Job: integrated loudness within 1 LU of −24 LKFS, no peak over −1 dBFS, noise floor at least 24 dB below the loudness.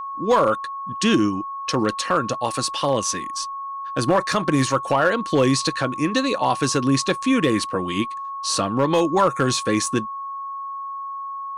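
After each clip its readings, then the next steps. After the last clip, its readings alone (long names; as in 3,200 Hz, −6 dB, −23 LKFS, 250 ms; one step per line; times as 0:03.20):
share of clipped samples 0.7%; peaks flattened at −10.0 dBFS; interfering tone 1,100 Hz; level of the tone −28 dBFS; integrated loudness −22.0 LKFS; sample peak −10.0 dBFS; target loudness −24.0 LKFS
→ clipped peaks rebuilt −10 dBFS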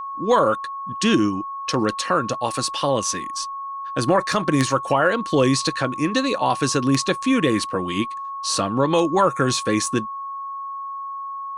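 share of clipped samples 0.0%; interfering tone 1,100 Hz; level of the tone −28 dBFS
→ notch filter 1,100 Hz, Q 30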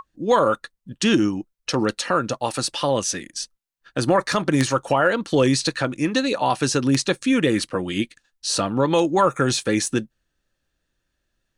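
interfering tone none found; integrated loudness −21.5 LKFS; sample peak −1.5 dBFS; target loudness −24.0 LKFS
→ level −2.5 dB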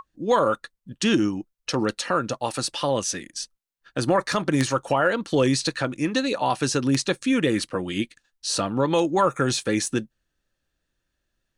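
integrated loudness −24.0 LKFS; sample peak −4.0 dBFS; background noise floor −79 dBFS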